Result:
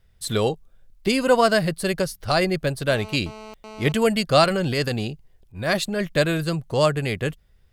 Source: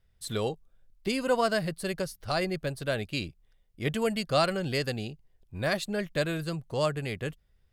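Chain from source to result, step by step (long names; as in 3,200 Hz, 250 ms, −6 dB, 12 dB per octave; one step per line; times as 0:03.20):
0:02.88–0:03.92: phone interference −48 dBFS
0:04.44–0:06.08: transient designer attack −11 dB, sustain +1 dB
level +8.5 dB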